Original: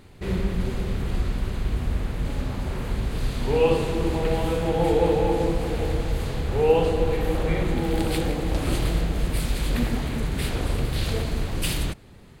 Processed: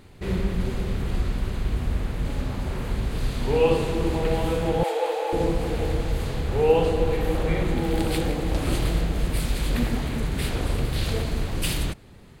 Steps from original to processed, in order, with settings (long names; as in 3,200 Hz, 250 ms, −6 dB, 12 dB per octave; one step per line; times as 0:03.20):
0:04.83–0:05.33: high-pass filter 520 Hz 24 dB per octave